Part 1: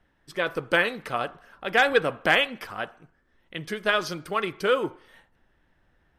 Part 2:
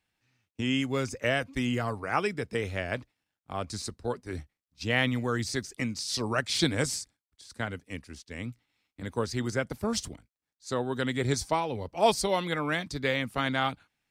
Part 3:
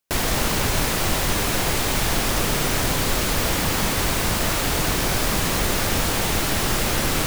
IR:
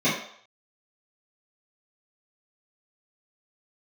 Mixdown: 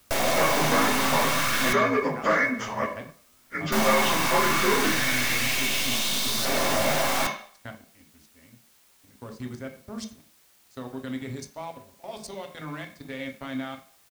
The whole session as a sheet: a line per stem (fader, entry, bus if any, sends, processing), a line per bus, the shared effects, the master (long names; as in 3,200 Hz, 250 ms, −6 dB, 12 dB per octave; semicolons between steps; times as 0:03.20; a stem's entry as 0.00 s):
+1.0 dB, 0.00 s, send −18.5 dB, partials spread apart or drawn together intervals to 83%; high-shelf EQ 4,600 Hz +12 dB; downward compressor, threshold −25 dBFS, peak gain reduction 8.5 dB
−10.0 dB, 0.05 s, send −18.5 dB, output level in coarse steps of 16 dB
−3.5 dB, 0.00 s, muted 0:01.73–0:03.72, send −15 dB, auto-filter high-pass saw up 0.31 Hz 480–4,400 Hz; half-wave rectification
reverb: on, RT60 0.65 s, pre-delay 3 ms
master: leveller curve on the samples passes 1; bit-depth reduction 10 bits, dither triangular